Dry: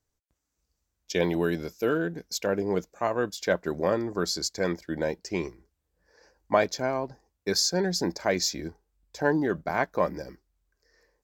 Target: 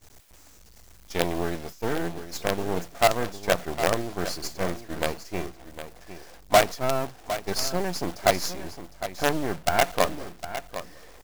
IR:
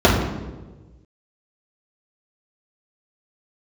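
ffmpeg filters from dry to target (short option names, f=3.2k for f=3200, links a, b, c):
-filter_complex "[0:a]aeval=exprs='val(0)+0.5*0.0316*sgn(val(0))':c=same,equalizer=f=700:w=6.4:g=12.5,asplit=2[a][b];[b]acompressor=threshold=-34dB:ratio=4,volume=2.5dB[c];[a][c]amix=inputs=2:normalize=0,acrusher=bits=3:dc=4:mix=0:aa=0.000001,agate=range=-33dB:threshold=-22dB:ratio=3:detection=peak,aecho=1:1:758:0.251,volume=-3.5dB"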